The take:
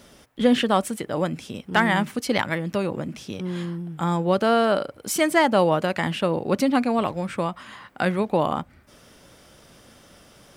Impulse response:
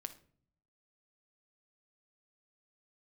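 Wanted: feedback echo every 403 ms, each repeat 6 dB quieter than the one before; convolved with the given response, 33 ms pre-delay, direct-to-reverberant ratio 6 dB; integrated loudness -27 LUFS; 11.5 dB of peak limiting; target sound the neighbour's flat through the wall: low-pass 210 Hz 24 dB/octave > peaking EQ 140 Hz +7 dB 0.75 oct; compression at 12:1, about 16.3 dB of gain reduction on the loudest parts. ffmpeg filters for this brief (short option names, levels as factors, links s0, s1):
-filter_complex "[0:a]acompressor=threshold=0.0316:ratio=12,alimiter=level_in=1.19:limit=0.0631:level=0:latency=1,volume=0.841,aecho=1:1:403|806|1209|1612|2015|2418:0.501|0.251|0.125|0.0626|0.0313|0.0157,asplit=2[s0][s1];[1:a]atrim=start_sample=2205,adelay=33[s2];[s1][s2]afir=irnorm=-1:irlink=0,volume=0.75[s3];[s0][s3]amix=inputs=2:normalize=0,lowpass=f=210:w=0.5412,lowpass=f=210:w=1.3066,equalizer=f=140:t=o:w=0.75:g=7,volume=2.99"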